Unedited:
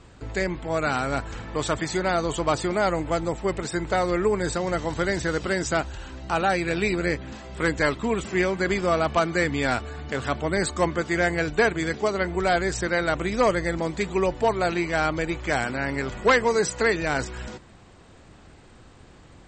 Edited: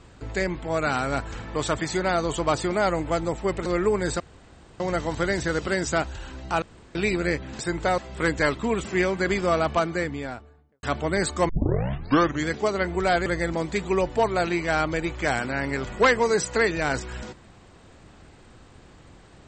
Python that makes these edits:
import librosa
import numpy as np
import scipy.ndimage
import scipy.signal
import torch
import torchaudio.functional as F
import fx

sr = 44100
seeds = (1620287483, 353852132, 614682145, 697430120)

y = fx.studio_fade_out(x, sr, start_s=8.95, length_s=1.28)
y = fx.edit(y, sr, fx.move(start_s=3.66, length_s=0.39, to_s=7.38),
    fx.insert_room_tone(at_s=4.59, length_s=0.6),
    fx.room_tone_fill(start_s=6.41, length_s=0.33),
    fx.tape_start(start_s=10.89, length_s=0.98),
    fx.cut(start_s=12.66, length_s=0.85), tone=tone)